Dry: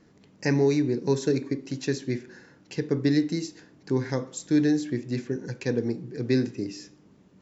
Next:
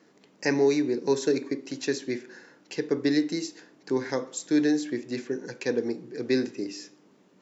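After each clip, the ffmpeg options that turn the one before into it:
-af "highpass=300,volume=1.26"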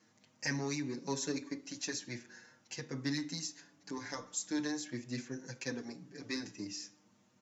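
-filter_complex "[0:a]asplit=2[s0][s1];[s1]asoftclip=type=tanh:threshold=0.0631,volume=0.447[s2];[s0][s2]amix=inputs=2:normalize=0,equalizer=f=100:t=o:w=0.67:g=11,equalizer=f=400:t=o:w=0.67:g=-12,equalizer=f=6300:t=o:w=0.67:g=7,asplit=2[s3][s4];[s4]adelay=6.1,afreqshift=0.42[s5];[s3][s5]amix=inputs=2:normalize=1,volume=0.447"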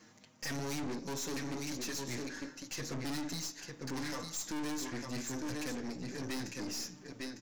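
-af "tremolo=f=1.3:d=0.41,aecho=1:1:903:0.355,aeval=exprs='(tanh(251*val(0)+0.55)-tanh(0.55))/251':c=same,volume=3.76"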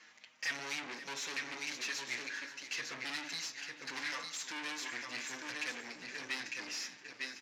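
-af "bandpass=f=2400:t=q:w=1.4:csg=0,aecho=1:1:528|1056|1584|2112:0.188|0.0848|0.0381|0.0172,volume=2.66"

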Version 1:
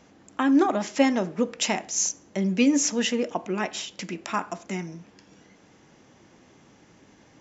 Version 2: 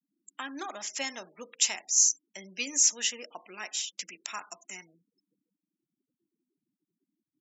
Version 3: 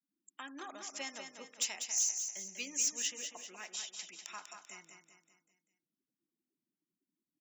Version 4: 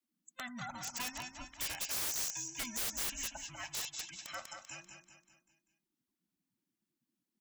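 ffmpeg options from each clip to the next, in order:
-af "afftfilt=real='re*gte(hypot(re,im),0.01)':imag='im*gte(hypot(re,im),0.01)':win_size=1024:overlap=0.75,aderivative,volume=1.68"
-filter_complex "[0:a]asoftclip=type=hard:threshold=0.133,asplit=2[s0][s1];[s1]aecho=0:1:195|390|585|780|975:0.447|0.205|0.0945|0.0435|0.02[s2];[s0][s2]amix=inputs=2:normalize=0,volume=0.376"
-filter_complex "[0:a]afftfilt=real='real(if(between(b,1,1008),(2*floor((b-1)/24)+1)*24-b,b),0)':imag='imag(if(between(b,1,1008),(2*floor((b-1)/24)+1)*24-b,b),0)*if(between(b,1,1008),-1,1)':win_size=2048:overlap=0.75,acrossover=split=160[s0][s1];[s1]aeval=exprs='(mod(50.1*val(0)+1,2)-1)/50.1':c=same[s2];[s0][s2]amix=inputs=2:normalize=0,volume=1.41"

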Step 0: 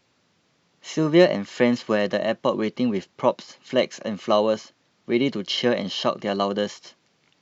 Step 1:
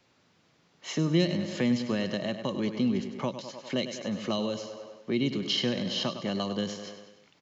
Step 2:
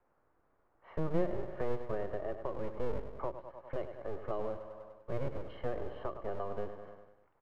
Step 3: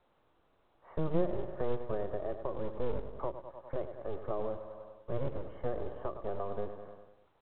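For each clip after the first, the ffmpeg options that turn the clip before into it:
-filter_complex "[0:a]highshelf=f=5400:g=-4,asplit=2[s0][s1];[s1]aecho=0:1:99|198|297|396|495|594:0.282|0.149|0.0792|0.042|0.0222|0.0118[s2];[s0][s2]amix=inputs=2:normalize=0,acrossover=split=240|3000[s3][s4][s5];[s4]acompressor=threshold=0.0178:ratio=4[s6];[s3][s6][s5]amix=inputs=3:normalize=0"
-filter_complex "[0:a]lowpass=f=1400:w=0.5412,lowpass=f=1400:w=1.3066,acrossover=split=420[s0][s1];[s0]aeval=exprs='abs(val(0))':c=same[s2];[s2][s1]amix=inputs=2:normalize=0,volume=0.631"
-af "lowpass=1400,acrusher=bits=7:mode=log:mix=0:aa=0.000001,volume=1.19" -ar 8000 -c:a pcm_mulaw

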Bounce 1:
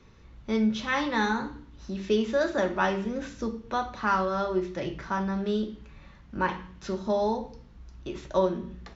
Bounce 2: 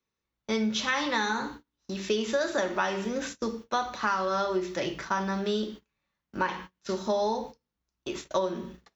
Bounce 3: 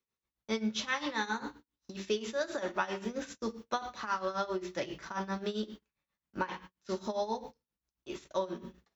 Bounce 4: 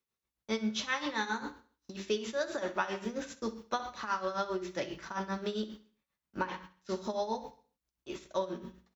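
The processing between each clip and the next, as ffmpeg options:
-af "agate=range=0.0282:threshold=0.01:ratio=16:detection=peak,aemphasis=mode=production:type=bsi,acompressor=threshold=0.0447:ratio=10,volume=1.58"
-af "tremolo=f=7.5:d=0.81,volume=0.708"
-af "aecho=1:1:65|130|195|260:0.158|0.0682|0.0293|0.0126"

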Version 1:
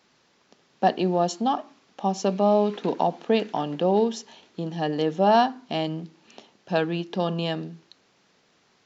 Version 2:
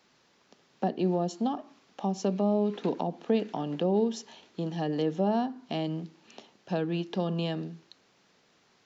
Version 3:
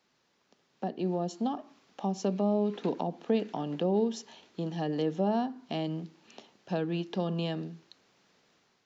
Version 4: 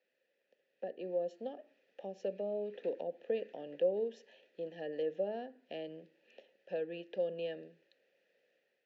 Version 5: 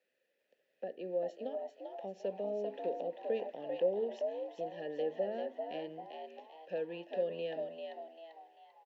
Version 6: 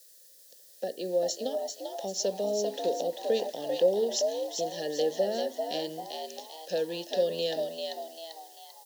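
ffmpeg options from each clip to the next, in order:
-filter_complex "[0:a]acrossover=split=450[s0][s1];[s1]acompressor=threshold=0.0251:ratio=6[s2];[s0][s2]amix=inputs=2:normalize=0,volume=0.794"
-af "dynaudnorm=f=710:g=3:m=2,volume=0.422"
-filter_complex "[0:a]asplit=3[s0][s1][s2];[s0]bandpass=f=530:t=q:w=8,volume=1[s3];[s1]bandpass=f=1840:t=q:w=8,volume=0.501[s4];[s2]bandpass=f=2480:t=q:w=8,volume=0.355[s5];[s3][s4][s5]amix=inputs=3:normalize=0,volume=1.5"
-filter_complex "[0:a]asplit=6[s0][s1][s2][s3][s4][s5];[s1]adelay=393,afreqshift=79,volume=0.531[s6];[s2]adelay=786,afreqshift=158,volume=0.211[s7];[s3]adelay=1179,afreqshift=237,volume=0.0851[s8];[s4]adelay=1572,afreqshift=316,volume=0.0339[s9];[s5]adelay=1965,afreqshift=395,volume=0.0136[s10];[s0][s6][s7][s8][s9][s10]amix=inputs=6:normalize=0"
-af "aexciter=amount=15:drive=8.3:freq=4000,volume=2.37"

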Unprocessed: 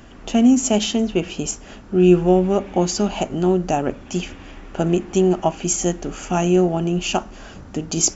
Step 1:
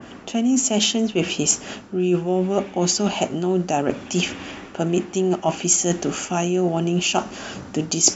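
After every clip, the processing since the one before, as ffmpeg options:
-af "highpass=130,areverse,acompressor=threshold=0.0631:ratio=6,areverse,adynamicequalizer=threshold=0.00631:dfrequency=2300:dqfactor=0.7:tfrequency=2300:tqfactor=0.7:attack=5:release=100:ratio=0.375:range=2:mode=boostabove:tftype=highshelf,volume=2.11"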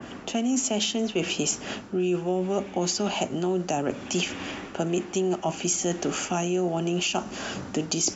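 -filter_complex "[0:a]acrossover=split=85|330|6400[s0][s1][s2][s3];[s0]acompressor=threshold=0.00224:ratio=4[s4];[s1]acompressor=threshold=0.0282:ratio=4[s5];[s2]acompressor=threshold=0.0501:ratio=4[s6];[s3]acompressor=threshold=0.0126:ratio=4[s7];[s4][s5][s6][s7]amix=inputs=4:normalize=0"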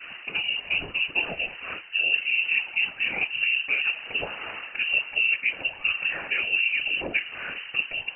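-af "afftfilt=real='hypot(re,im)*cos(2*PI*random(0))':imag='hypot(re,im)*sin(2*PI*random(1))':win_size=512:overlap=0.75,lowshelf=f=270:t=q:w=1.5:g=-8.5,lowpass=f=2600:t=q:w=0.5098,lowpass=f=2600:t=q:w=0.6013,lowpass=f=2600:t=q:w=0.9,lowpass=f=2600:t=q:w=2.563,afreqshift=-3100,volume=2.24"

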